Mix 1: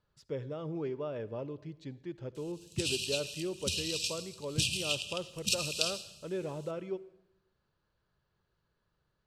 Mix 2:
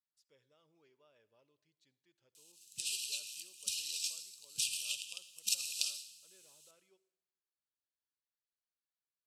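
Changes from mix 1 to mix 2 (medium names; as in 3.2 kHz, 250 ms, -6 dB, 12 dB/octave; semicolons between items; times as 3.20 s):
speech -10.5 dB; master: add pre-emphasis filter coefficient 0.97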